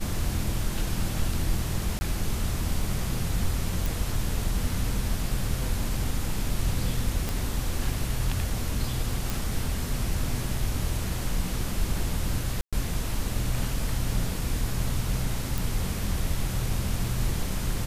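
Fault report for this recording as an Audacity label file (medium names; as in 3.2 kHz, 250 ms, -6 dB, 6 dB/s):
1.990000	2.010000	dropout 20 ms
3.860000	3.860000	pop
7.290000	7.290000	pop
9.300000	9.300000	pop
12.610000	12.730000	dropout 116 ms
15.580000	15.580000	pop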